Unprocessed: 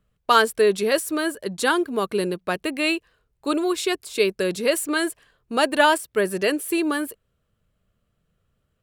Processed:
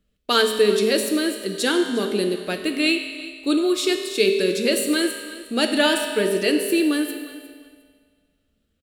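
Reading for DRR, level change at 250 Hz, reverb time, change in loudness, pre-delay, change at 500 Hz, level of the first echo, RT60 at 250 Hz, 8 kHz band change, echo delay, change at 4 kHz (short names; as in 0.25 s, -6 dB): 4.0 dB, +4.0 dB, 1.8 s, +1.5 dB, 5 ms, +1.5 dB, -17.5 dB, 1.8 s, +2.0 dB, 0.357 s, +4.5 dB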